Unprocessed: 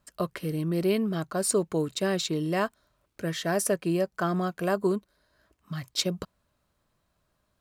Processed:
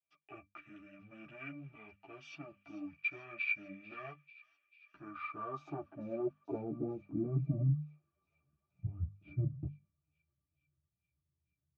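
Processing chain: HPF 130 Hz 12 dB/oct; low shelf 200 Hz +8.5 dB; notch 1800 Hz, Q 13; sample leveller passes 2; band-pass sweep 3300 Hz -> 200 Hz, 3.09–4.99; wide varispeed 0.646×; notches 50/100/150/200/250 Hz; octave resonator D, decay 0.11 s; on a send: thin delay 0.443 s, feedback 67%, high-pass 2900 Hz, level -14 dB; on the sum: ensemble effect; gain +9 dB

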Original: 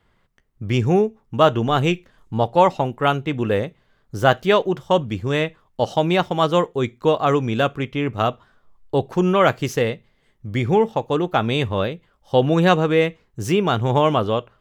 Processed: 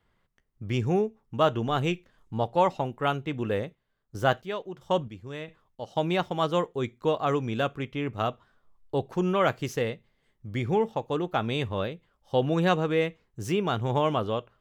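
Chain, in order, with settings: 3.48–5.96 chopper 1.5 Hz, depth 65%, duty 40%; gain -8 dB

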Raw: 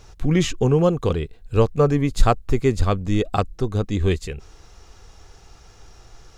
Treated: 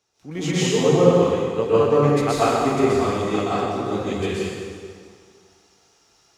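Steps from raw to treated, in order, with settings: HPF 200 Hz 12 dB/oct; plate-style reverb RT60 2.6 s, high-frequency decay 0.85×, pre-delay 0.11 s, DRR -10 dB; three-band expander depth 40%; gain -7 dB

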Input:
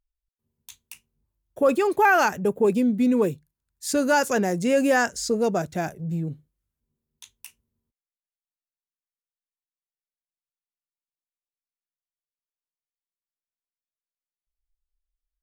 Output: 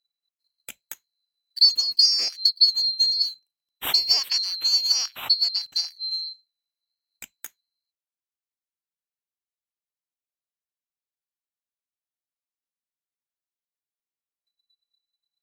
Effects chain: band-swap scrambler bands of 4000 Hz; transient shaper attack +11 dB, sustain -2 dB; gain -4.5 dB

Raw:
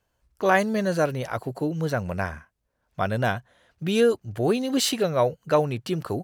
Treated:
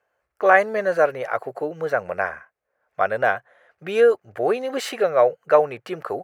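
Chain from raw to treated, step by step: HPF 190 Hz 6 dB/oct; band shelf 980 Hz +15 dB 2.9 oct; notch 960 Hz, Q 8.2; gain -8.5 dB

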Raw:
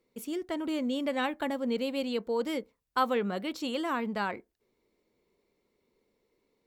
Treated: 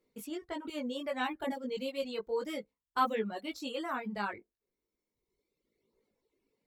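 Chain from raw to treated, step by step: chorus voices 2, 0.33 Hz, delay 19 ms, depth 1.1 ms; reverb removal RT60 1.5 s

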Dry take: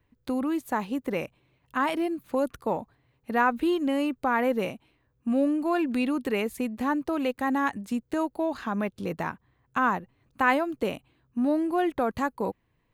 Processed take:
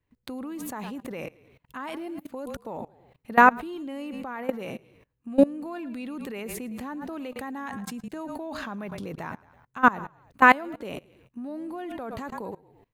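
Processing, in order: frequency-shifting echo 0.11 s, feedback 40%, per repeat -30 Hz, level -17.5 dB; level quantiser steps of 22 dB; gain +9 dB

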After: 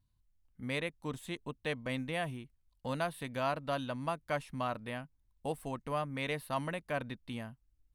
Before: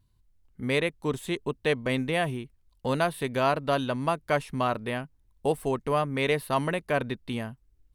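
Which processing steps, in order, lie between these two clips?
bell 400 Hz -12.5 dB 0.23 oct; gain -8.5 dB

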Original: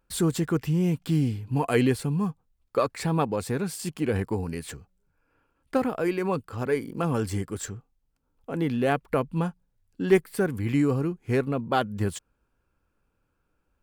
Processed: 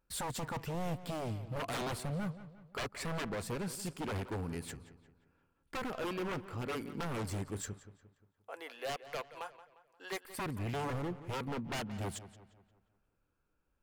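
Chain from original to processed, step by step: 7.73–10.25 HPF 590 Hz 24 dB/oct; wavefolder -25 dBFS; darkening echo 0.176 s, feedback 46%, low-pass 4200 Hz, level -14 dB; gain -7 dB

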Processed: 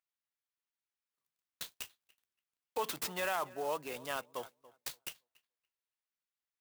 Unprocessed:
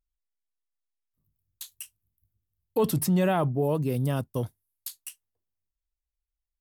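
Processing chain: HPF 1100 Hz 12 dB/oct; high shelf 5800 Hz -9.5 dB; limiter -29 dBFS, peak gain reduction 6 dB; darkening echo 0.284 s, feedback 20%, low-pass 2100 Hz, level -19 dB; clock jitter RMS 0.032 ms; gain +4 dB

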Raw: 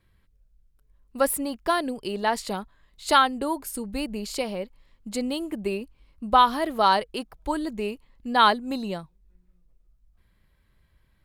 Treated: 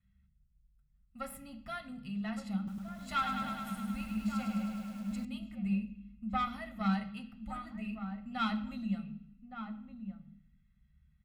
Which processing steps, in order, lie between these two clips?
one diode to ground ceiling -10.5 dBFS; EQ curve 220 Hz 0 dB, 370 Hz -29 dB, 1100 Hz -15 dB, 3000 Hz -12 dB, 4700 Hz -21 dB; flange 0.37 Hz, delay 4 ms, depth 7.3 ms, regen -74%; low shelf 110 Hz +7 dB; comb 1.5 ms, depth 80%; outdoor echo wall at 200 m, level -8 dB; reverb RT60 0.65 s, pre-delay 3 ms, DRR 3.5 dB; 2.57–5.25 lo-fi delay 0.104 s, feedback 80%, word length 10-bit, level -5.5 dB; gain +1.5 dB

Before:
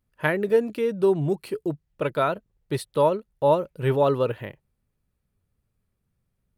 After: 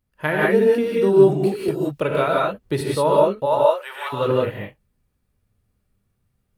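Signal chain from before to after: 3.45–4.12 HPF 450 Hz -> 1200 Hz 24 dB/oct; non-linear reverb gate 0.21 s rising, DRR -4.5 dB; 1.68–2.81 three-band squash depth 70%

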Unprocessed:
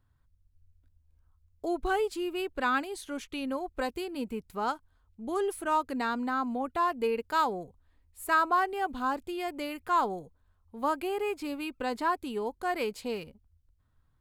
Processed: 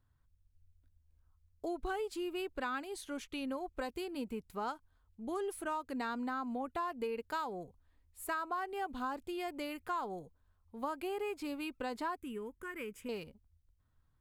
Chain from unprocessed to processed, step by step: compressor 6:1, threshold -30 dBFS, peak gain reduction 10 dB; 12.16–13.09 fixed phaser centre 1800 Hz, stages 4; gain -4 dB

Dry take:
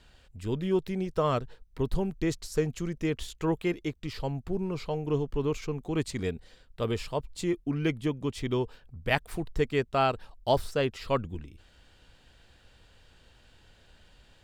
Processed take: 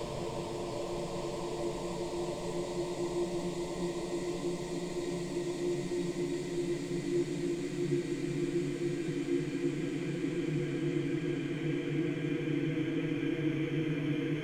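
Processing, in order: Paulstretch 22×, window 1.00 s, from 7.2; delay with a stepping band-pass 0.308 s, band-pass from 300 Hz, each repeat 1.4 oct, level -4 dB; gain -4.5 dB

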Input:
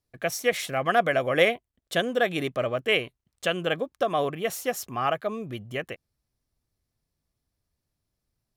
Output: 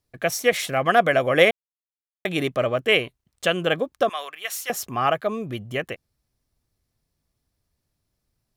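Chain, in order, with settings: 1.51–2.25 mute; 4.09–4.7 HPF 1400 Hz 12 dB/oct; gain +4.5 dB

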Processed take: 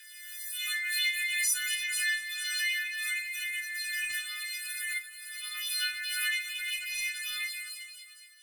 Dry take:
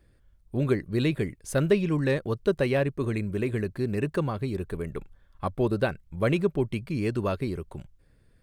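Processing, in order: frequency quantiser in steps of 3 st; steep high-pass 1600 Hz 72 dB/oct; on a send: echo with dull and thin repeats by turns 0.113 s, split 2300 Hz, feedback 75%, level -11 dB; on the sum: compressor 2:1, threshold -42 dBFS, peak gain reduction 10.5 dB; phaser 0.54 Hz, delay 2.2 ms, feedback 46%; in parallel at -11 dB: bit-crush 4-bit; on the sum: shoebox room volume 220 m³, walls furnished, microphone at 2.2 m; backwards sustainer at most 29 dB/s; gain +3 dB

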